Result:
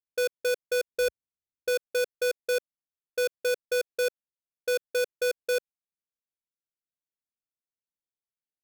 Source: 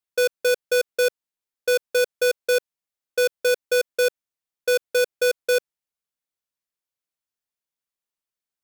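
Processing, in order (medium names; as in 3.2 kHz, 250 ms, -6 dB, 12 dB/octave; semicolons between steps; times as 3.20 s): local Wiener filter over 41 samples; 0.91–1.69 s: peaking EQ 70 Hz +12 dB 2.5 oct; trim -6 dB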